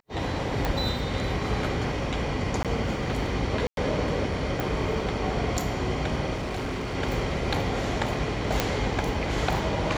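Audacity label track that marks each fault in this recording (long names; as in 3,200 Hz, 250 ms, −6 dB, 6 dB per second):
0.650000	0.650000	click −12 dBFS
2.630000	2.650000	drop-out 17 ms
3.670000	3.770000	drop-out 102 ms
4.600000	4.600000	click
6.340000	6.960000	clipping −27.5 dBFS
8.600000	8.600000	click −7 dBFS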